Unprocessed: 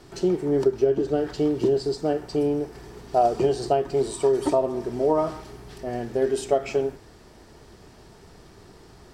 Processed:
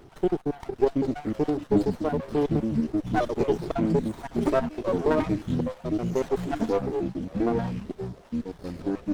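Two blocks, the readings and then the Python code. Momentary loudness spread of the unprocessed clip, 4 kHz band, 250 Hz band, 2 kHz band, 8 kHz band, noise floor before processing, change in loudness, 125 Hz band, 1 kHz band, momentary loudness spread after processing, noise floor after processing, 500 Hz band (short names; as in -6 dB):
10 LU, -5.0 dB, +2.5 dB, +3.0 dB, n/a, -50 dBFS, -3.0 dB, +4.0 dB, -4.0 dB, 9 LU, -50 dBFS, -4.0 dB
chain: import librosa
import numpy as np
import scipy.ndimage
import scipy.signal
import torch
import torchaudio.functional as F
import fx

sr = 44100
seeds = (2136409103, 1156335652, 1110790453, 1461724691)

y = fx.spec_dropout(x, sr, seeds[0], share_pct=53)
y = fx.echo_pitch(y, sr, ms=649, semitones=-5, count=3, db_per_echo=-3.0)
y = fx.running_max(y, sr, window=17)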